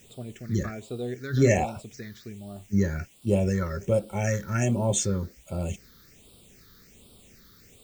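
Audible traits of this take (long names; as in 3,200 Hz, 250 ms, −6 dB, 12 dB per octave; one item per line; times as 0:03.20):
a quantiser's noise floor 10 bits, dither triangular
phaser sweep stages 6, 1.3 Hz, lowest notch 690–1,800 Hz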